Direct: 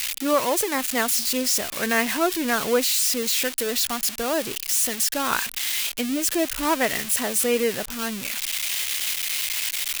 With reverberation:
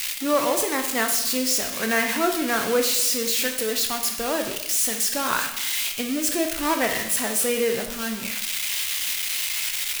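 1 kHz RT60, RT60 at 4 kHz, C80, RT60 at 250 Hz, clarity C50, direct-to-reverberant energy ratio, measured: 0.85 s, 0.80 s, 9.5 dB, 0.90 s, 7.0 dB, 3.5 dB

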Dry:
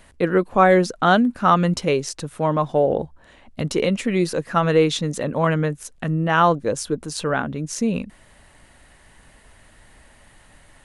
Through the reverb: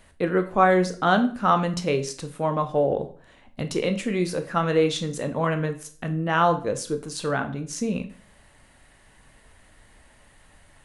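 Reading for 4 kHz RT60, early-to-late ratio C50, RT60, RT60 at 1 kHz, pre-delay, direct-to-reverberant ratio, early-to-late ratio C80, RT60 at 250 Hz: 0.40 s, 13.0 dB, 0.40 s, 0.40 s, 16 ms, 7.0 dB, 17.0 dB, 0.55 s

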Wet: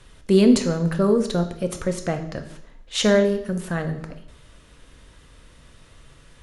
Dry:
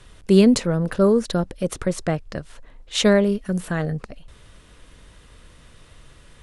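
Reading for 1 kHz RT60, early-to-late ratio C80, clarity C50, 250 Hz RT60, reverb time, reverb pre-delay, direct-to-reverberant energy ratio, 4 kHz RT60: 0.75 s, 13.0 dB, 10.5 dB, 0.70 s, 0.70 s, 3 ms, 6.0 dB, 0.70 s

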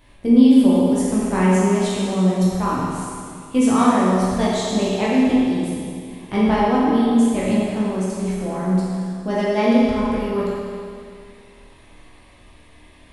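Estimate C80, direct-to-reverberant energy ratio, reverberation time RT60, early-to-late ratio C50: -1.0 dB, -8.0 dB, 2.3 s, -3.0 dB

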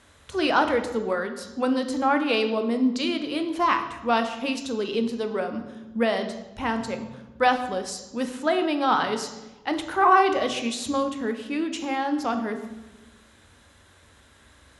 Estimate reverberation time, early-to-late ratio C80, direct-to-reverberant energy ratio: 1.1 s, 11.5 dB, 6.5 dB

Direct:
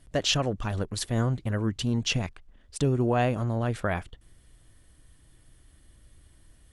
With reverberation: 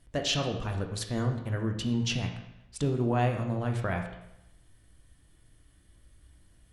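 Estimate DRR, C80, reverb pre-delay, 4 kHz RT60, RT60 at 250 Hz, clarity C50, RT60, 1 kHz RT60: 3.5 dB, 9.5 dB, 17 ms, 0.75 s, 0.85 s, 6.5 dB, 0.85 s, 0.85 s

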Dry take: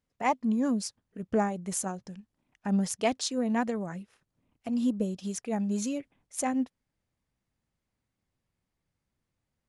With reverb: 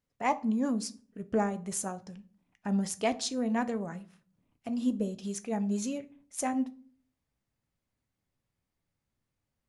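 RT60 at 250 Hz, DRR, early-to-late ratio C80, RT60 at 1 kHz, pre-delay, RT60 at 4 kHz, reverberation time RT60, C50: 0.65 s, 10.0 dB, 24.0 dB, 0.45 s, 7 ms, 0.30 s, 0.45 s, 18.5 dB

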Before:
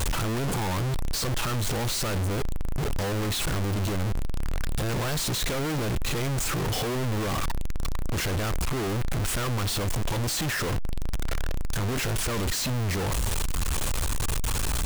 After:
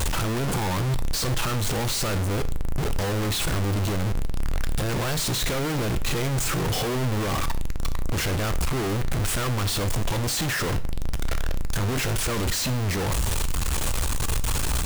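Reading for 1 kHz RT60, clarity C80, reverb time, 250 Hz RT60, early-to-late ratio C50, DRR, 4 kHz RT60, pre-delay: 0.50 s, 20.5 dB, 0.55 s, 0.55 s, 16.5 dB, 12.0 dB, 0.50 s, 6 ms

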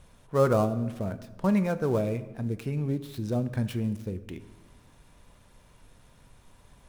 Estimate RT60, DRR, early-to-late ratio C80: 1.2 s, 11.5 dB, 16.0 dB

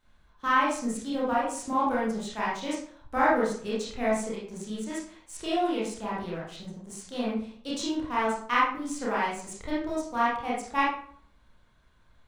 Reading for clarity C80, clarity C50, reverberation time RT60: 6.0 dB, 0.5 dB, 0.55 s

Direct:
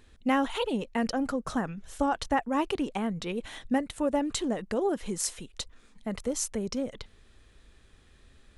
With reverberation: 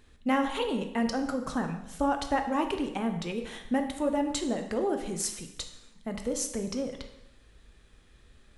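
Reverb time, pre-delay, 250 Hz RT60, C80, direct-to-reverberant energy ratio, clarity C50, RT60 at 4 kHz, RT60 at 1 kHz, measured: 0.85 s, 6 ms, 0.90 s, 11.0 dB, 5.0 dB, 8.5 dB, 0.85 s, 0.85 s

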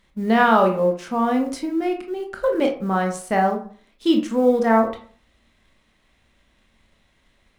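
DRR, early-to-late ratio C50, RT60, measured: 2.5 dB, 9.0 dB, 0.45 s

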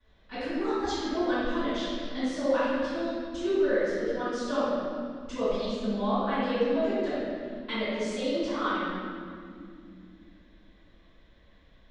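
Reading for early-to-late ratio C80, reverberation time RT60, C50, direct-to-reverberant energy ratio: -2.0 dB, 2.3 s, -5.5 dB, -22.0 dB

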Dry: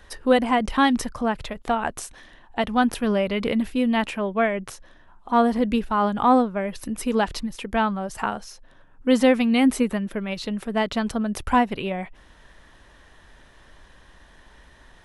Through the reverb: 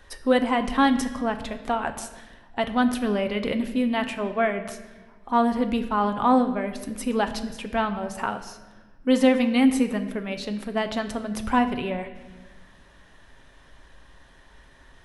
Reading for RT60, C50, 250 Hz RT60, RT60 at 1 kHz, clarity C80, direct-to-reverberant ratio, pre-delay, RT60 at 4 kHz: 1.3 s, 11.0 dB, 2.0 s, 1.1 s, 12.5 dB, 7.0 dB, 7 ms, 1.1 s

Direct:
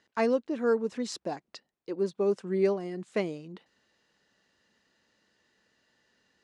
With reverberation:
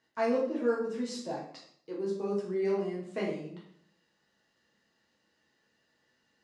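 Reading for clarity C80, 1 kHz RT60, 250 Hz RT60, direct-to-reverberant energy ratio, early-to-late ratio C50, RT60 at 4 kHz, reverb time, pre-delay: 8.0 dB, 0.60 s, 0.75 s, -5.0 dB, 4.0 dB, 0.50 s, 0.65 s, 6 ms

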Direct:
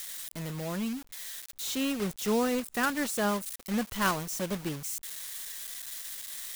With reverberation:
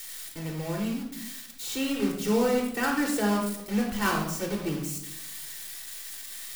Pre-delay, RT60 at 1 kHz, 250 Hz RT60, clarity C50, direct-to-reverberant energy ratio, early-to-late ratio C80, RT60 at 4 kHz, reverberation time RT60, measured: 3 ms, 0.70 s, 1.1 s, 4.5 dB, -1.5 dB, 7.5 dB, 0.55 s, 0.80 s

